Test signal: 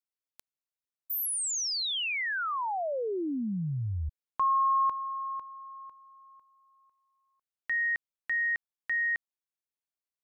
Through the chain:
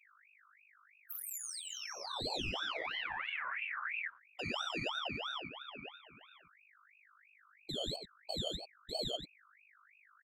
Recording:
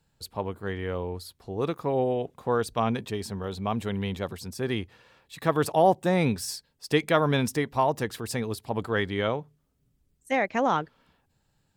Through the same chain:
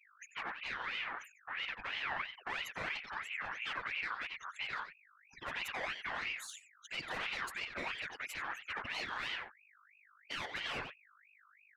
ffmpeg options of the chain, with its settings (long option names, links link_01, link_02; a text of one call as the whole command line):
ffmpeg -i in.wav -filter_complex "[0:a]afftfilt=real='re*gte(hypot(re,im),0.0224)':imag='im*gte(hypot(re,im),0.0224)':win_size=1024:overlap=0.75,highshelf=frequency=2300:width_type=q:width=1.5:gain=-6,acompressor=threshold=-30dB:ratio=3:attack=29:release=25:knee=1:detection=rms,asoftclip=type=tanh:threshold=-32.5dB,afftfilt=real='hypot(re,im)*cos(2*PI*random(0))':imag='hypot(re,im)*sin(2*PI*random(1))':win_size=512:overlap=0.75,aeval=exprs='val(0)+0.000501*(sin(2*PI*50*n/s)+sin(2*PI*2*50*n/s)/2+sin(2*PI*3*50*n/s)/3+sin(2*PI*4*50*n/s)/4+sin(2*PI*5*50*n/s)/5)':channel_layout=same,asplit=2[link_01][link_02];[link_02]adelay=90,highpass=300,lowpass=3400,asoftclip=type=hard:threshold=-36dB,volume=-6dB[link_03];[link_01][link_03]amix=inputs=2:normalize=0,aeval=exprs='val(0)*sin(2*PI*1900*n/s+1900*0.35/3*sin(2*PI*3*n/s))':channel_layout=same,volume=4dB" out.wav